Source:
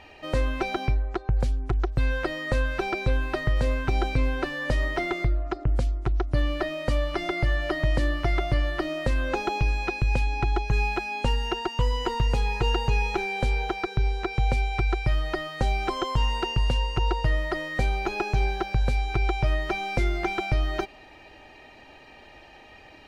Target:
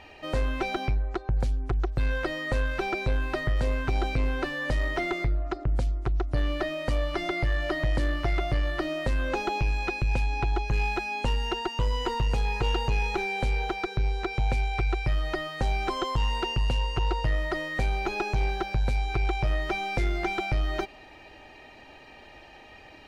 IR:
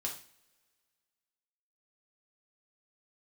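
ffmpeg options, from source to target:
-af "asoftclip=type=tanh:threshold=-18.5dB"

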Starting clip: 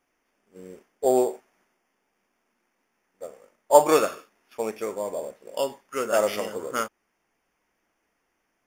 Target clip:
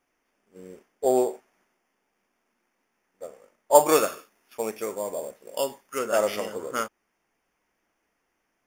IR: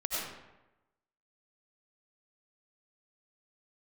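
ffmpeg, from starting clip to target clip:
-filter_complex "[0:a]asettb=1/sr,asplit=3[a][b][c];[a]atrim=end=3.754[d];[b]atrim=start=3.75:end=5.99,asetpts=PTS-STARTPTS,afade=t=in:d=0.004:c=qsin,afade=t=out:st=2.236:d=0.004:c=qsin,highshelf=f=7.4k:g=9[e];[c]atrim=start=5.986[f];[d][e]acrossfade=d=0.004:c1=hsin:c2=qsin[g];[g][f]acrossfade=d=0.004:c1=qsin:c2=hsin,volume=-1dB"

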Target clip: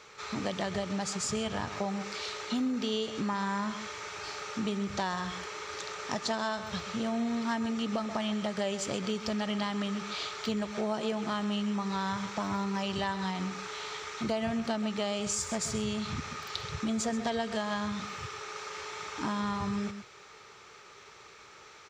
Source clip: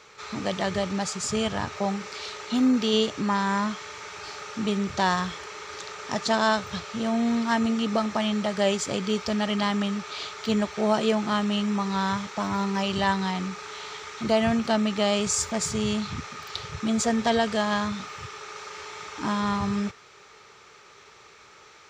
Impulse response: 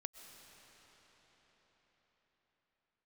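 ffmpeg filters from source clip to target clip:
-af "aecho=1:1:131:0.211,acompressor=threshold=-28dB:ratio=4,volume=-1.5dB"

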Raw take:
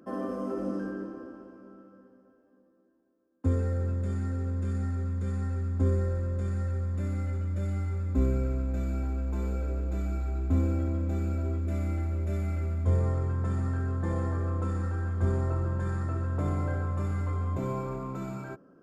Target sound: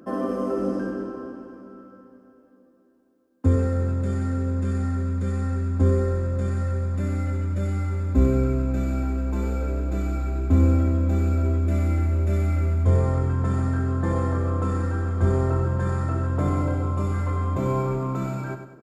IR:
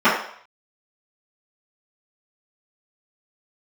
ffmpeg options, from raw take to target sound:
-filter_complex "[0:a]asettb=1/sr,asplit=3[a][b][c];[a]atrim=end=16.624[d];[b]atrim=start=16.62:end=17.14,asetpts=PTS-STARTPTS,afade=t=in:d=0.004:c=qsin,afade=t=out:st=0.516:d=0.004:c=qsin,equalizer=f=1.7k:w=4.8:g=-12[e];[c]atrim=start=17.136[f];[d][e]acrossfade=d=0.004:c1=hsin:c2=qsin[g];[g][f]acrossfade=d=0.004:c1=qsin:c2=hsin,aecho=1:1:99|198|297|396|495:0.355|0.149|0.0626|0.0263|0.011,volume=7dB"

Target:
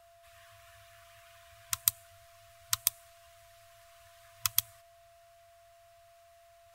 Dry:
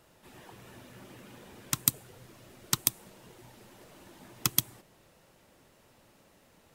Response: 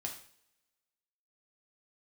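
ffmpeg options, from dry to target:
-af "afftfilt=real='re*(1-between(b*sr/4096,110,1000))':imag='im*(1-between(b*sr/4096,110,1000))':win_size=4096:overlap=0.75,areverse,acompressor=mode=upward:threshold=-60dB:ratio=2.5,areverse,aeval=exprs='0.794*(cos(1*acos(clip(val(0)/0.794,-1,1)))-cos(1*PI/2))+0.0631*(cos(3*acos(clip(val(0)/0.794,-1,1)))-cos(3*PI/2))':c=same,aeval=exprs='val(0)+0.00126*sin(2*PI*680*n/s)':c=same"

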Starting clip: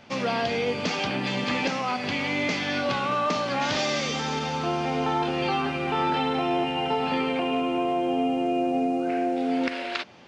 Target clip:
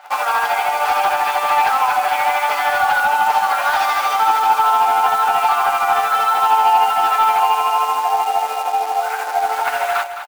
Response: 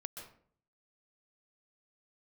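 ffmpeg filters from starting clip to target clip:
-filter_complex "[0:a]afftfilt=real='re*lt(hypot(re,im),0.251)':imag='im*lt(hypot(re,im),0.251)':win_size=1024:overlap=0.75,equalizer=f=1.4k:t=o:w=0.33:g=11,aecho=1:1:6.8:0.84,tremolo=f=13:d=0.62,asplit=2[a][b];[b]highpass=f=720:p=1,volume=18dB,asoftclip=type=tanh:threshold=-9.5dB[c];[a][c]amix=inputs=2:normalize=0,lowpass=f=1.4k:p=1,volume=-6dB,acrusher=bits=6:dc=4:mix=0:aa=0.000001,highpass=f=800:t=q:w=7.3,asoftclip=type=tanh:threshold=-7dB,asplit=2[d][e];[e]aecho=0:1:211:0.316[f];[d][f]amix=inputs=2:normalize=0,adynamicequalizer=threshold=0.0141:dfrequency=7000:dqfactor=0.7:tfrequency=7000:tqfactor=0.7:attack=5:release=100:ratio=0.375:range=1.5:mode=boostabove:tftype=highshelf"

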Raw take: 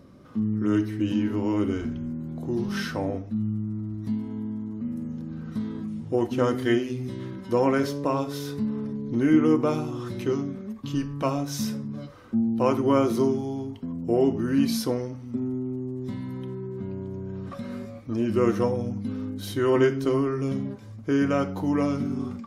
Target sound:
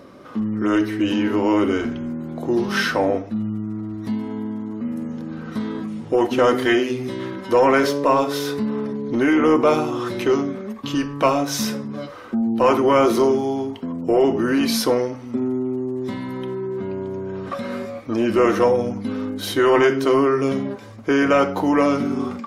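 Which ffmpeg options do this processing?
-af "apsyclip=20.5dB,bass=f=250:g=-15,treble=f=4k:g=-5,volume=-7.5dB"

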